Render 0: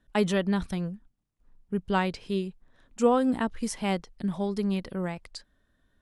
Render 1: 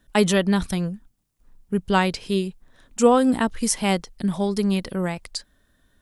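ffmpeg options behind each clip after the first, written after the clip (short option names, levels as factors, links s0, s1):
-af "highshelf=f=5100:g=10.5,volume=2"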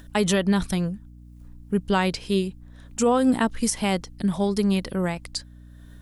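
-af "alimiter=limit=0.266:level=0:latency=1:release=71,acompressor=mode=upward:threshold=0.00794:ratio=2.5,aeval=exprs='val(0)+0.00631*(sin(2*PI*60*n/s)+sin(2*PI*2*60*n/s)/2+sin(2*PI*3*60*n/s)/3+sin(2*PI*4*60*n/s)/4+sin(2*PI*5*60*n/s)/5)':c=same"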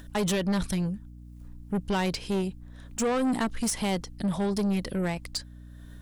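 -af "asoftclip=type=tanh:threshold=0.075"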